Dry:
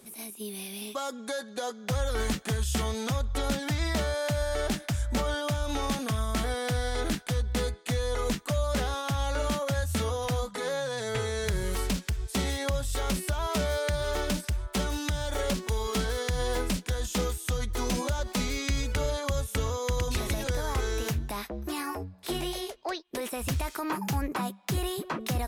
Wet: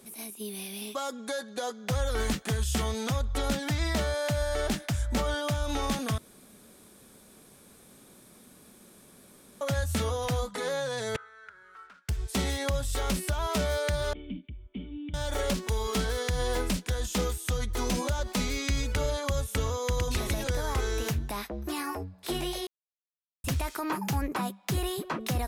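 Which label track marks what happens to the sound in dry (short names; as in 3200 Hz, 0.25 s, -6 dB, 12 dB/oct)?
6.180000	9.610000	room tone
11.160000	12.090000	band-pass 1400 Hz, Q 11
14.130000	15.140000	vocal tract filter i
22.670000	23.440000	mute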